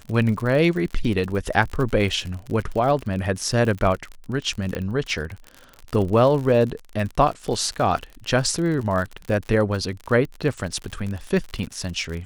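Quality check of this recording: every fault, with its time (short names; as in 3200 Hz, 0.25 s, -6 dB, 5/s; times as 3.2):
crackle 54/s -28 dBFS
4.75 pop -15 dBFS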